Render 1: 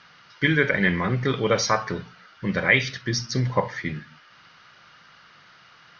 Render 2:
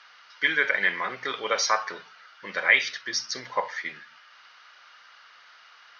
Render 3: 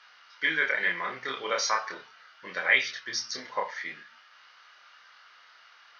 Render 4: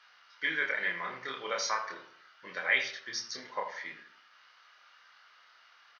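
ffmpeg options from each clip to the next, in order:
-af "highpass=730"
-af "flanger=delay=22.5:depth=7.9:speed=0.38"
-filter_complex "[0:a]asplit=2[a][b];[b]adelay=80,lowpass=f=1.6k:p=1,volume=-9dB,asplit=2[c][d];[d]adelay=80,lowpass=f=1.6k:p=1,volume=0.42,asplit=2[e][f];[f]adelay=80,lowpass=f=1.6k:p=1,volume=0.42,asplit=2[g][h];[h]adelay=80,lowpass=f=1.6k:p=1,volume=0.42,asplit=2[i][j];[j]adelay=80,lowpass=f=1.6k:p=1,volume=0.42[k];[a][c][e][g][i][k]amix=inputs=6:normalize=0,volume=-5dB"

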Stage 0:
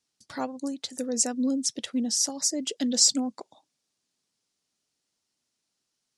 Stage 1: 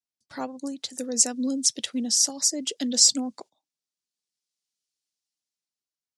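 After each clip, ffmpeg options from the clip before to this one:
-filter_complex "[0:a]acrossover=split=180|1100|2300[a][b][c][d];[d]dynaudnorm=f=220:g=11:m=14dB[e];[a][b][c][e]amix=inputs=4:normalize=0,agate=range=-17dB:threshold=-45dB:ratio=16:detection=peak,volume=-1dB"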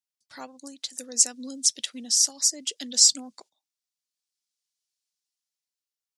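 -af "tiltshelf=f=1.1k:g=-6.5,volume=-5.5dB"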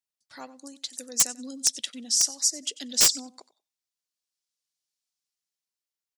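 -af "aecho=1:1:93|186:0.119|0.019,aeval=exprs='(mod(2.51*val(0)+1,2)-1)/2.51':c=same,volume=-1.5dB"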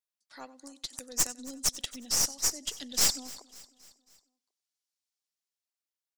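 -filter_complex "[0:a]acrossover=split=160|1600[a][b][c];[a]acrusher=bits=4:dc=4:mix=0:aa=0.000001[d];[d][b][c]amix=inputs=3:normalize=0,aeval=exprs='(tanh(8.91*val(0)+0.7)-tanh(0.7))/8.91':c=same,aecho=1:1:273|546|819|1092:0.0944|0.0481|0.0246|0.0125"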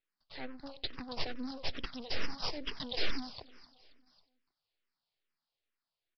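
-filter_complex "[0:a]aeval=exprs='max(val(0),0)':c=same,aresample=11025,aresample=44100,asplit=2[a][b];[b]afreqshift=-2.3[c];[a][c]amix=inputs=2:normalize=1,volume=12dB"

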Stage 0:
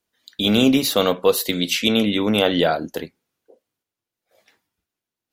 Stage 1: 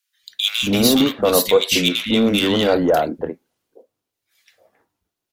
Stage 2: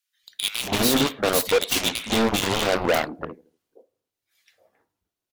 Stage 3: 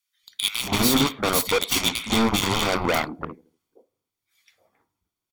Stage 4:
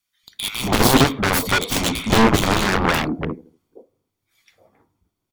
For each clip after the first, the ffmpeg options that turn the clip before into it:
-filter_complex "[0:a]asplit=2[a][b];[b]aeval=exprs='0.158*(abs(mod(val(0)/0.158+3,4)-2)-1)':c=same,volume=-9dB[c];[a][c]amix=inputs=2:normalize=0,acrossover=split=190|1500[d][e][f];[d]adelay=230[g];[e]adelay=270[h];[g][h][f]amix=inputs=3:normalize=0,volume=2dB"
-filter_complex "[0:a]asplit=2[a][b];[b]adelay=81,lowpass=f=1.1k:p=1,volume=-21dB,asplit=2[c][d];[d]adelay=81,lowpass=f=1.1k:p=1,volume=0.41,asplit=2[e][f];[f]adelay=81,lowpass=f=1.1k:p=1,volume=0.41[g];[a][c][e][g]amix=inputs=4:normalize=0,aeval=exprs='0.794*(cos(1*acos(clip(val(0)/0.794,-1,1)))-cos(1*PI/2))+0.158*(cos(7*acos(clip(val(0)/0.794,-1,1)))-cos(7*PI/2))':c=same,asoftclip=type=hard:threshold=-16.5dB,volume=3dB"
-af "aecho=1:1:0.9:0.43"
-af "tiltshelf=f=800:g=6,aeval=exprs='0.531*(cos(1*acos(clip(val(0)/0.531,-1,1)))-cos(1*PI/2))+0.266*(cos(7*acos(clip(val(0)/0.531,-1,1)))-cos(7*PI/2))':c=same"

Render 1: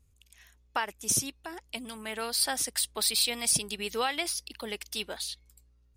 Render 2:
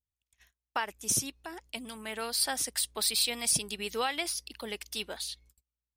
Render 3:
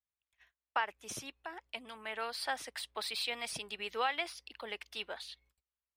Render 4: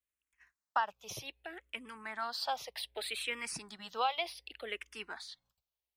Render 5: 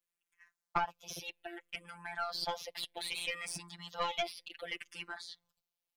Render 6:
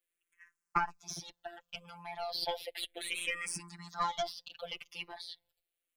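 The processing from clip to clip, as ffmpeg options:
-af "agate=range=-28dB:threshold=-55dB:ratio=16:detection=peak,volume=-1.5dB"
-filter_complex "[0:a]acrossover=split=480 3400:gain=0.224 1 0.112[a][b][c];[a][b][c]amix=inputs=3:normalize=0"
-filter_complex "[0:a]asplit=2[a][b];[b]afreqshift=-0.65[c];[a][c]amix=inputs=2:normalize=1,volume=3dB"
-af "afftfilt=real='hypot(re,im)*cos(PI*b)':imag='0':win_size=1024:overlap=0.75,aeval=exprs='(tanh(17.8*val(0)+0.55)-tanh(0.55))/17.8':c=same,volume=6.5dB"
-filter_complex "[0:a]asplit=2[a][b];[b]afreqshift=-0.35[c];[a][c]amix=inputs=2:normalize=1,volume=4dB"

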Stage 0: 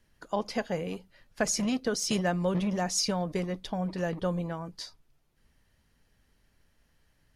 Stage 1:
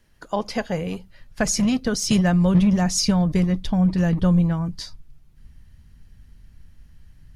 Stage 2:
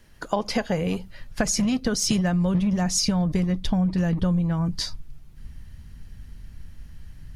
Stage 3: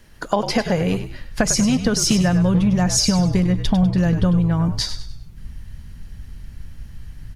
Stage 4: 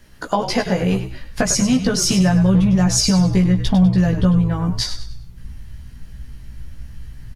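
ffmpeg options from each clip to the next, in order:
-af "asubboost=boost=7:cutoff=180,volume=6dB"
-af "acompressor=threshold=-27dB:ratio=6,volume=6.5dB"
-filter_complex "[0:a]asplit=5[a][b][c][d][e];[b]adelay=99,afreqshift=-60,volume=-10dB[f];[c]adelay=198,afreqshift=-120,volume=-18.9dB[g];[d]adelay=297,afreqshift=-180,volume=-27.7dB[h];[e]adelay=396,afreqshift=-240,volume=-36.6dB[i];[a][f][g][h][i]amix=inputs=5:normalize=0,volume=5dB"
-filter_complex "[0:a]asplit=2[a][b];[b]adelay=16,volume=-2.5dB[c];[a][c]amix=inputs=2:normalize=0,volume=-1dB"

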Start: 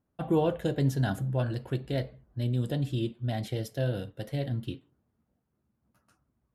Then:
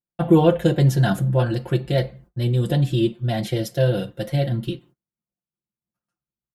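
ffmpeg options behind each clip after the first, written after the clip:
-af "agate=range=-29dB:threshold=-56dB:ratio=16:detection=peak,aecho=1:1:5.7:0.91,volume=7.5dB"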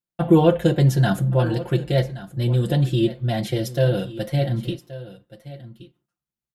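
-af "aecho=1:1:1125:0.15"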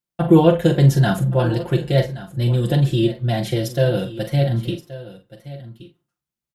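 -filter_complex "[0:a]asplit=2[a][b];[b]adelay=43,volume=-9dB[c];[a][c]amix=inputs=2:normalize=0,volume=2dB"

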